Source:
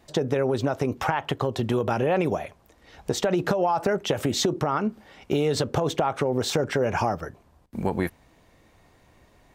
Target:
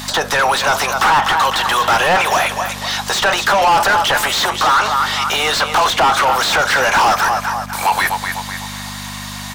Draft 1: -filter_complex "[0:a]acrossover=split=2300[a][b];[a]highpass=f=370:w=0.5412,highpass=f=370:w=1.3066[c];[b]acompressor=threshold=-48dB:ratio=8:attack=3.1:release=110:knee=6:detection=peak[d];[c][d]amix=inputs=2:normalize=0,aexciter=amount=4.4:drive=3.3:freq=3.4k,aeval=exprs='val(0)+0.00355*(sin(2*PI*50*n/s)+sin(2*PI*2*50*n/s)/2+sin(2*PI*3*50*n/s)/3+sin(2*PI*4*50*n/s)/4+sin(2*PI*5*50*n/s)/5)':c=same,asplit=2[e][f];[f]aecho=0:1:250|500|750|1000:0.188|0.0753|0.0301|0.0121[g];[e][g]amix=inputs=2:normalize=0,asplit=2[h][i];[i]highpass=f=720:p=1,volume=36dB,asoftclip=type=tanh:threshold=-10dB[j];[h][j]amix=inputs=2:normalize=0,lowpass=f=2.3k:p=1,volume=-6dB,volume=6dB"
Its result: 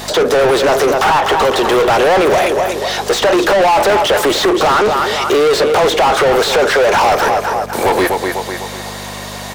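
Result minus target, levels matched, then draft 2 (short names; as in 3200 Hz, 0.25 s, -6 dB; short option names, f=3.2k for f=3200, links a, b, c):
500 Hz band +8.5 dB
-filter_complex "[0:a]acrossover=split=2300[a][b];[a]highpass=f=920:w=0.5412,highpass=f=920:w=1.3066[c];[b]acompressor=threshold=-48dB:ratio=8:attack=3.1:release=110:knee=6:detection=peak[d];[c][d]amix=inputs=2:normalize=0,aexciter=amount=4.4:drive=3.3:freq=3.4k,aeval=exprs='val(0)+0.00355*(sin(2*PI*50*n/s)+sin(2*PI*2*50*n/s)/2+sin(2*PI*3*50*n/s)/3+sin(2*PI*4*50*n/s)/4+sin(2*PI*5*50*n/s)/5)':c=same,asplit=2[e][f];[f]aecho=0:1:250|500|750|1000:0.188|0.0753|0.0301|0.0121[g];[e][g]amix=inputs=2:normalize=0,asplit=2[h][i];[i]highpass=f=720:p=1,volume=36dB,asoftclip=type=tanh:threshold=-10dB[j];[h][j]amix=inputs=2:normalize=0,lowpass=f=2.3k:p=1,volume=-6dB,volume=6dB"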